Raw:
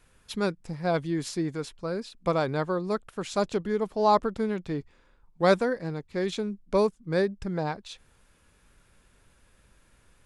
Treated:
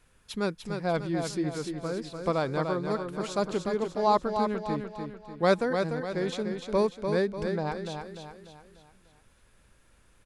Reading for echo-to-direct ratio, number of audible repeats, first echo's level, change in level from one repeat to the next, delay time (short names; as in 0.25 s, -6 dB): -5.0 dB, 5, -6.0 dB, -7.0 dB, 0.296 s